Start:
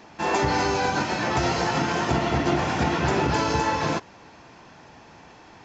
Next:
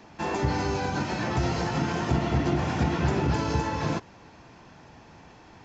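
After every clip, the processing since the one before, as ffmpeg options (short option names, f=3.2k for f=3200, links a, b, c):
-filter_complex "[0:a]lowshelf=f=220:g=7.5,acrossover=split=340[a][b];[b]acompressor=threshold=-24dB:ratio=6[c];[a][c]amix=inputs=2:normalize=0,volume=-4dB"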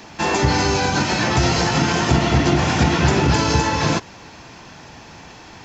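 -af "highshelf=f=2.2k:g=9.5,volume=8dB"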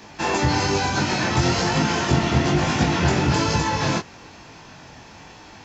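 -af "flanger=delay=19:depth=4.8:speed=1.1"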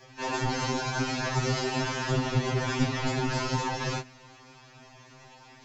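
-af "afftfilt=real='hypot(re,im)*cos(2*PI*random(0))':imag='hypot(re,im)*sin(2*PI*random(1))':win_size=512:overlap=0.75,afftfilt=real='re*2.45*eq(mod(b,6),0)':imag='im*2.45*eq(mod(b,6),0)':win_size=2048:overlap=0.75"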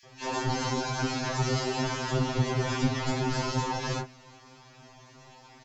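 -filter_complex "[0:a]acrossover=split=2100[a][b];[a]adelay=30[c];[c][b]amix=inputs=2:normalize=0"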